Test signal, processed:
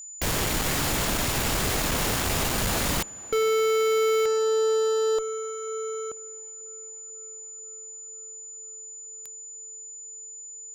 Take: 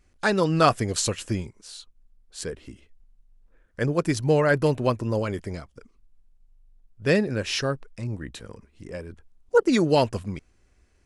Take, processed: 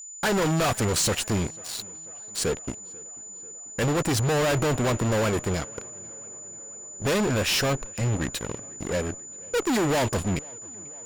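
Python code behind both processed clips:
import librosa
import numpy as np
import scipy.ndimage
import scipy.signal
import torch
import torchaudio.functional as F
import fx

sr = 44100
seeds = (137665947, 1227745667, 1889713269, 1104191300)

p1 = fx.dynamic_eq(x, sr, hz=740.0, q=1.4, threshold_db=-34.0, ratio=4.0, max_db=4)
p2 = fx.fuzz(p1, sr, gain_db=36.0, gate_db=-42.0)
p3 = p2 + 10.0 ** (-30.0 / 20.0) * np.sin(2.0 * np.pi * 7000.0 * np.arange(len(p2)) / sr)
p4 = p3 + fx.echo_tape(p3, sr, ms=491, feedback_pct=85, wet_db=-21.5, lp_hz=2300.0, drive_db=12.0, wow_cents=8, dry=0)
y = p4 * 10.0 ** (-8.5 / 20.0)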